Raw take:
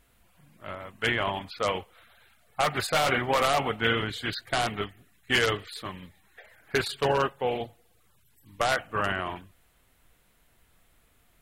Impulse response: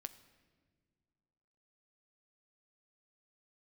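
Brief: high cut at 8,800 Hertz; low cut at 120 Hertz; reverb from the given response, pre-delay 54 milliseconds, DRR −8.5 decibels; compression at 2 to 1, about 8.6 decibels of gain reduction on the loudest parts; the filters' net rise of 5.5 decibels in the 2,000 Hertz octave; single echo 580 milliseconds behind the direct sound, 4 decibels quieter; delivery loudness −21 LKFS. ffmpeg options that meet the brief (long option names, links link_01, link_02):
-filter_complex "[0:a]highpass=120,lowpass=8800,equalizer=frequency=2000:width_type=o:gain=7,acompressor=threshold=-33dB:ratio=2,aecho=1:1:580:0.631,asplit=2[link_01][link_02];[1:a]atrim=start_sample=2205,adelay=54[link_03];[link_02][link_03]afir=irnorm=-1:irlink=0,volume=12.5dB[link_04];[link_01][link_04]amix=inputs=2:normalize=0,volume=2.5dB"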